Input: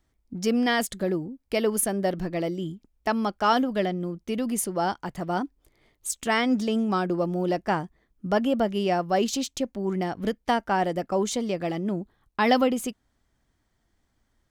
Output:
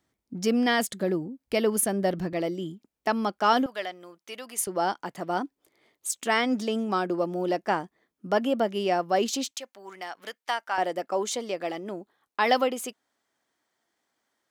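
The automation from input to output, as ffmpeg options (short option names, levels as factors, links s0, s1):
-af "asetnsamples=n=441:p=0,asendcmd='1.47 highpass f 62;2.33 highpass f 200;3.66 highpass f 830;4.67 highpass f 260;9.51 highpass f 1000;10.78 highpass f 410',highpass=140"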